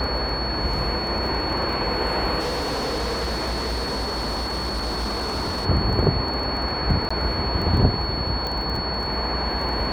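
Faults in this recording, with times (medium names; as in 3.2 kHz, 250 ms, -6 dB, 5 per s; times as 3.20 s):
crackle 14 per s -28 dBFS
whine 4.4 kHz -28 dBFS
2.39–5.66 s: clipped -22.5 dBFS
7.09–7.11 s: dropout 15 ms
8.47 s: pop -15 dBFS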